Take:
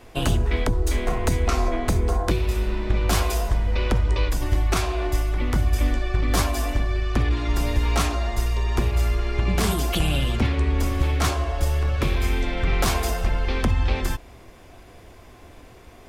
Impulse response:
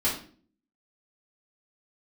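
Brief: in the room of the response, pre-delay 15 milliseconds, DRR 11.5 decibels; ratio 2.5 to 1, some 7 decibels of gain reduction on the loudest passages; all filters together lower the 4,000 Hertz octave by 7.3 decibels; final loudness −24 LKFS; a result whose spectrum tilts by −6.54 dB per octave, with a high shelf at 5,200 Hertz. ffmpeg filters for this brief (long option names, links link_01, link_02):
-filter_complex "[0:a]equalizer=frequency=4000:width_type=o:gain=-8,highshelf=frequency=5200:gain=-5,acompressor=threshold=-27dB:ratio=2.5,asplit=2[link_01][link_02];[1:a]atrim=start_sample=2205,adelay=15[link_03];[link_02][link_03]afir=irnorm=-1:irlink=0,volume=-21.5dB[link_04];[link_01][link_04]amix=inputs=2:normalize=0,volume=4.5dB"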